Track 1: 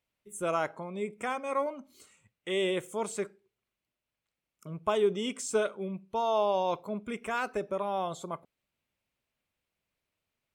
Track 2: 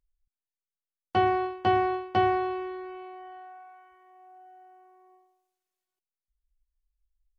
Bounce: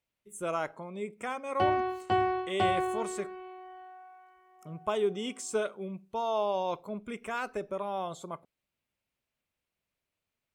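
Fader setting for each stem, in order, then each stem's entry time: −2.5, −3.5 decibels; 0.00, 0.45 seconds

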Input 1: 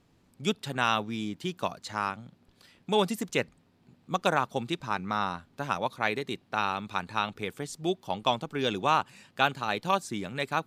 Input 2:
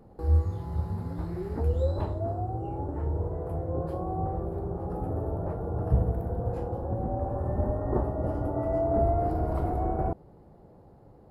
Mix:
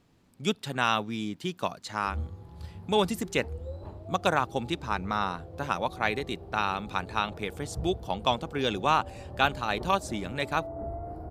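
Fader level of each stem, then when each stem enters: +0.5, −12.0 decibels; 0.00, 1.85 seconds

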